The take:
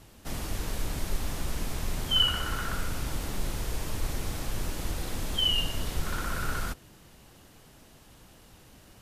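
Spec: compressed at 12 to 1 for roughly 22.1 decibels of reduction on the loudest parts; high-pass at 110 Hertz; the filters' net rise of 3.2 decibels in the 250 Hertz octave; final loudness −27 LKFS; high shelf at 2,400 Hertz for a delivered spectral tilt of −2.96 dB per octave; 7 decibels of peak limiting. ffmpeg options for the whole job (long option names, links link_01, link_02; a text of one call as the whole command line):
ffmpeg -i in.wav -af "highpass=110,equalizer=frequency=250:width_type=o:gain=4.5,highshelf=frequency=2400:gain=5,acompressor=threshold=-41dB:ratio=12,volume=19.5dB,alimiter=limit=-18dB:level=0:latency=1" out.wav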